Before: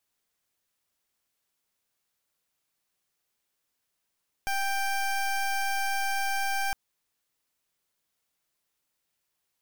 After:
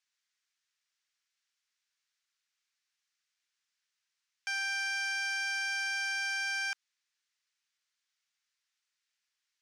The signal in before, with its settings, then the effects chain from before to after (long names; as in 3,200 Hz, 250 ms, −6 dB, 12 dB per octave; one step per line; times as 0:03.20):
pulse wave 787 Hz, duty 21% −28 dBFS 2.26 s
Chebyshev band-pass filter 1,600–6,100 Hz, order 2